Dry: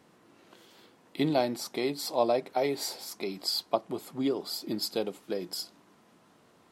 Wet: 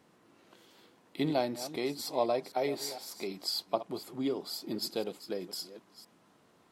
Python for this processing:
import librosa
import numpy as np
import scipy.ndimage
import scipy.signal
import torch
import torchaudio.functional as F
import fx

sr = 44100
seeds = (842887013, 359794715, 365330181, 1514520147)

y = fx.reverse_delay(x, sr, ms=252, wet_db=-13.5)
y = F.gain(torch.from_numpy(y), -3.5).numpy()